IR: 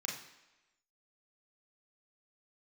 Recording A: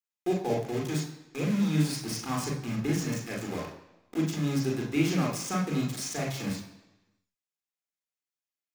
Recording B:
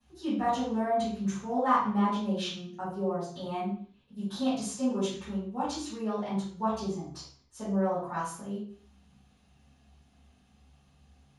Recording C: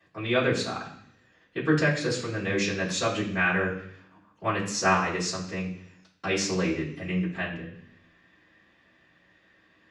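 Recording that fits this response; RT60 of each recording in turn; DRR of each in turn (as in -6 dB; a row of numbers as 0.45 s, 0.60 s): A; 1.0 s, 0.50 s, 0.65 s; -2.0 dB, -16.5 dB, -14.5 dB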